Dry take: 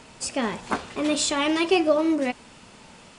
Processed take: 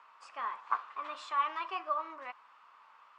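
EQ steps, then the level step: ladder band-pass 1200 Hz, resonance 75%; 0.0 dB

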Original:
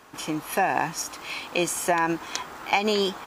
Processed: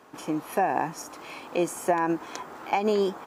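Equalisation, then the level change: HPF 430 Hz 6 dB/oct; dynamic EQ 3600 Hz, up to -6 dB, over -41 dBFS, Q 1; tilt shelf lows +7.5 dB, about 820 Hz; 0.0 dB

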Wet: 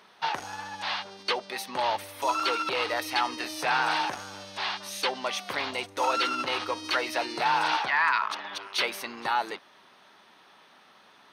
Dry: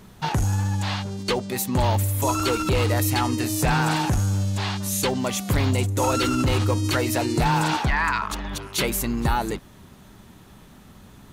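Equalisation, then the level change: polynomial smoothing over 15 samples; HPF 690 Hz 12 dB/oct; 0.0 dB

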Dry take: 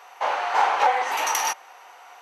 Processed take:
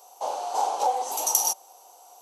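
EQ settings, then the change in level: EQ curve 770 Hz 0 dB, 1900 Hz -26 dB, 3200 Hz -7 dB, 7600 Hz +12 dB; -2.5 dB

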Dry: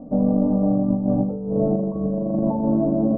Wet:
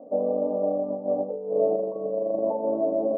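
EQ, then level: ladder band-pass 600 Hz, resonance 50%; +8.5 dB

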